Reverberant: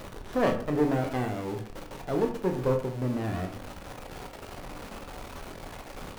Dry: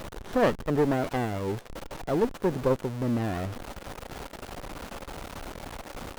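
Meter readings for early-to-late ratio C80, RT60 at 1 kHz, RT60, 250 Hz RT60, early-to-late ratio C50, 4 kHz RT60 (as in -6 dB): 13.5 dB, 0.50 s, 0.50 s, 0.55 s, 9.5 dB, 0.30 s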